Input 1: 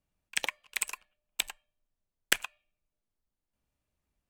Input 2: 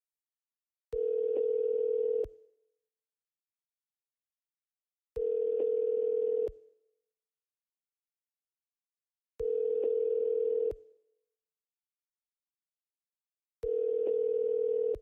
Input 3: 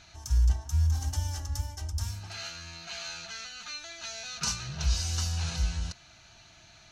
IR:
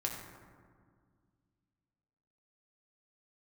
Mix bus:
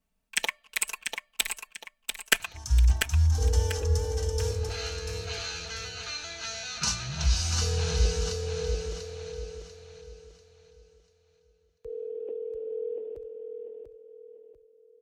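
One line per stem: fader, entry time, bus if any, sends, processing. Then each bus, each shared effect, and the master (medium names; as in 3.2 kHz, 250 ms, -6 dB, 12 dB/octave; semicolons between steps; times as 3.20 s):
+1.0 dB, 0.00 s, no send, echo send -6 dB, comb 4.5 ms, depth 93%
-5.5 dB, 2.45 s, no send, echo send -5.5 dB, vibrato 1.2 Hz 7.5 cents
+2.5 dB, 2.40 s, no send, echo send -6.5 dB, low-pass 11 kHz 12 dB/octave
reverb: none
echo: feedback delay 692 ms, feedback 35%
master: none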